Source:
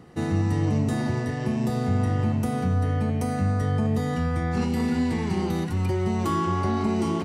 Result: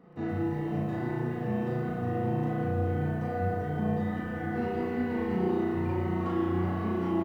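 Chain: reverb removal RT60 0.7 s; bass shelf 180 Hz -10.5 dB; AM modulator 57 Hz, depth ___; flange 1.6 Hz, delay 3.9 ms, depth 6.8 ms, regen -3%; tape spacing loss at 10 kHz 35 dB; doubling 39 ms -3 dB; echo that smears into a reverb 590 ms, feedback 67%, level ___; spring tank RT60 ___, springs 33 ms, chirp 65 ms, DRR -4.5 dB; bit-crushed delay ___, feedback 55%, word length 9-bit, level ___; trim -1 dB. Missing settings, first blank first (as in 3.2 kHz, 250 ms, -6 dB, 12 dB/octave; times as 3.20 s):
15%, -10 dB, 1.7 s, 120 ms, -12.5 dB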